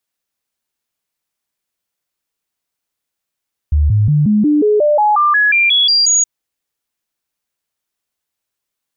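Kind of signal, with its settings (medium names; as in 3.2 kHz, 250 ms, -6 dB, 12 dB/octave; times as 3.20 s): stepped sine 74.4 Hz up, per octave 2, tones 14, 0.18 s, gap 0.00 s -8.5 dBFS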